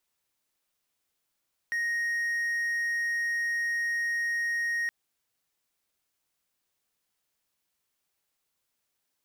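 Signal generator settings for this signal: tone triangle 1870 Hz -24.5 dBFS 3.17 s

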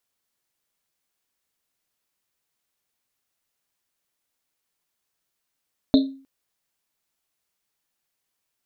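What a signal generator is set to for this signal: Risset drum length 0.31 s, pitch 270 Hz, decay 0.43 s, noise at 3900 Hz, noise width 560 Hz, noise 15%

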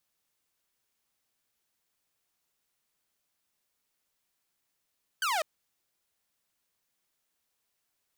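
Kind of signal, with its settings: laser zap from 1600 Hz, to 590 Hz, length 0.20 s saw, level -24 dB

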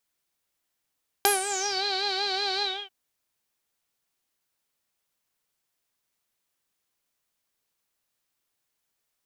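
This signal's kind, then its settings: synth patch with vibrato G5, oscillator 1 saw, sub -7.5 dB, noise -12.5 dB, filter lowpass, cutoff 3000 Hz, Q 11, filter envelope 2 oct, filter decay 0.56 s, filter sustain 25%, attack 1 ms, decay 0.14 s, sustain -11 dB, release 0.28 s, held 1.36 s, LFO 5.3 Hz, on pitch 81 cents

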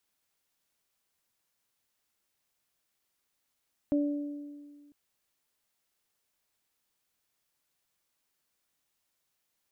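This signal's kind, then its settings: additive tone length 1.00 s, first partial 290 Hz, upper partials -8 dB, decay 1.84 s, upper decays 1.19 s, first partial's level -23 dB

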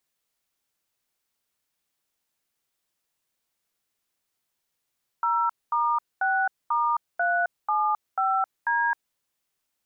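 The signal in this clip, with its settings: DTMF "0*6*375D", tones 0.265 s, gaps 0.226 s, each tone -23.5 dBFS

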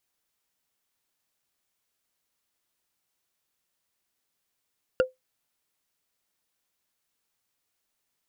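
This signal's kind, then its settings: wood hit, lowest mode 514 Hz, decay 0.16 s, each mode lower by 6 dB, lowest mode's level -14 dB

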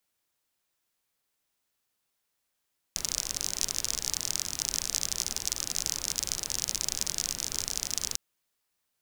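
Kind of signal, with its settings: rain from filtered ticks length 5.20 s, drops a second 44, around 5900 Hz, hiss -11 dB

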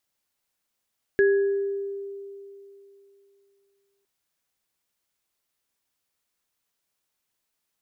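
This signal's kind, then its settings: sine partials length 2.86 s, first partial 397 Hz, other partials 1670 Hz, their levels -7 dB, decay 2.94 s, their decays 0.80 s, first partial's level -15 dB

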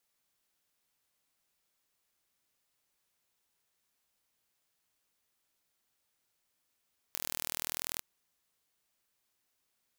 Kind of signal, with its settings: pulse train 40.3/s, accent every 0, -8.5 dBFS 0.85 s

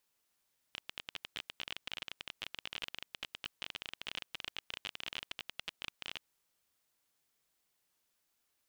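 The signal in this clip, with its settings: random clicks 25/s -23 dBFS 5.47 s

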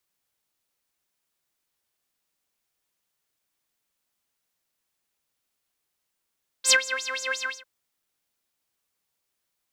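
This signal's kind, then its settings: synth patch with filter wobble C5, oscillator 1 triangle, interval 0 st, oscillator 2 level -3.5 dB, sub -17 dB, filter bandpass, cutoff 2700 Hz, Q 8.8, filter envelope 0.5 oct, attack 61 ms, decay 0.07 s, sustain -19 dB, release 0.22 s, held 0.78 s, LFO 5.7 Hz, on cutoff 1.2 oct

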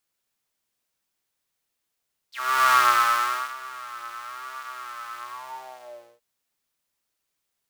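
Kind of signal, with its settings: synth patch with vibrato B2, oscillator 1 square, interval 0 st, detune 12 cents, oscillator 2 level -0.5 dB, noise -16 dB, filter highpass, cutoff 470 Hz, Q 9.3, filter envelope 3.5 oct, filter decay 0.07 s, attack 0.406 s, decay 0.81 s, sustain -20.5 dB, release 1.01 s, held 2.87 s, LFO 1 Hz, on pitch 86 cents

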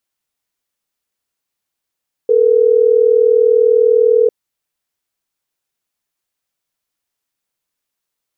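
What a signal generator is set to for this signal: call progress tone ringback tone, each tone -10.5 dBFS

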